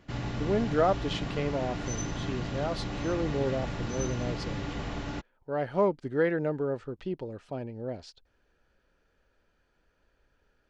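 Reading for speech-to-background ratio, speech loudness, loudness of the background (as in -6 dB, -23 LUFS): 3.5 dB, -32.0 LUFS, -35.5 LUFS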